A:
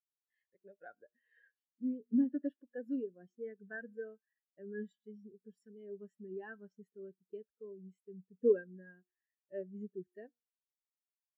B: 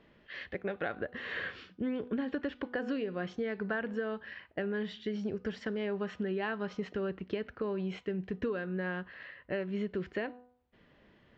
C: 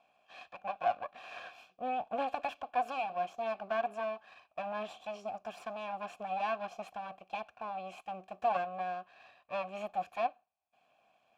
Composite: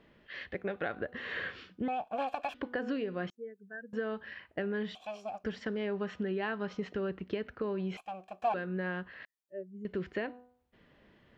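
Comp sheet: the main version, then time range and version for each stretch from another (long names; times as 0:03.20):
B
0:01.88–0:02.54: punch in from C
0:03.30–0:03.93: punch in from A
0:04.95–0:05.44: punch in from C
0:07.97–0:08.54: punch in from C
0:09.25–0:09.85: punch in from A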